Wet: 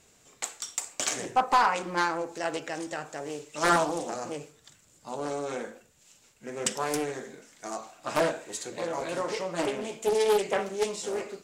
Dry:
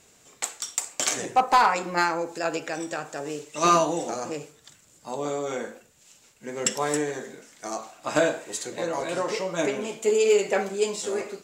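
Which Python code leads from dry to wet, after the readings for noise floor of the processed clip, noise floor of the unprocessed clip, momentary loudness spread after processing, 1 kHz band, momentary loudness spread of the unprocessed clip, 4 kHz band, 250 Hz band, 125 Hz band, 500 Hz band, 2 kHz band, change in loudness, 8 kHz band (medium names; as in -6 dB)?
-61 dBFS, -58 dBFS, 15 LU, -3.5 dB, 15 LU, -3.0 dB, -4.0 dB, -3.5 dB, -4.0 dB, -2.5 dB, -3.5 dB, -4.5 dB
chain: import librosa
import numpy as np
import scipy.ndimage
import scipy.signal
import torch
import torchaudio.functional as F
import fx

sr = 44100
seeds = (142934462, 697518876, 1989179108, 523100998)

y = fx.low_shelf(x, sr, hz=84.0, db=5.5)
y = fx.doppler_dist(y, sr, depth_ms=0.5)
y = F.gain(torch.from_numpy(y), -3.5).numpy()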